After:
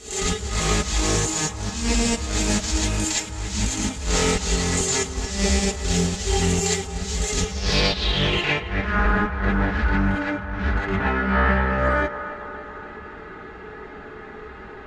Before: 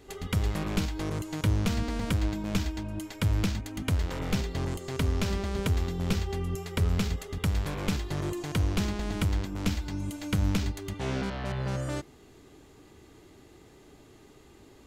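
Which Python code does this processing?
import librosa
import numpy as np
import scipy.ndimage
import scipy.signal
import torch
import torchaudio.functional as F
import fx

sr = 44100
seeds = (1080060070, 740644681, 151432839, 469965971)

y = fx.high_shelf(x, sr, hz=2600.0, db=10.5)
y = fx.quant_companded(y, sr, bits=4)
y = fx.filter_sweep_lowpass(y, sr, from_hz=7300.0, to_hz=1500.0, start_s=7.3, end_s=8.98, q=4.1)
y = fx.over_compress(y, sr, threshold_db=-30.0, ratio=-0.5)
y = fx.high_shelf(y, sr, hz=9300.0, db=-6.5)
y = y + 0.52 * np.pad(y, (int(4.7 * sr / 1000.0), 0))[:len(y)]
y = fx.echo_banded(y, sr, ms=275, feedback_pct=71, hz=1000.0, wet_db=-10.0)
y = fx.rev_gated(y, sr, seeds[0], gate_ms=80, shape='rising', drr_db=-7.0)
y = fx.doppler_dist(y, sr, depth_ms=0.13)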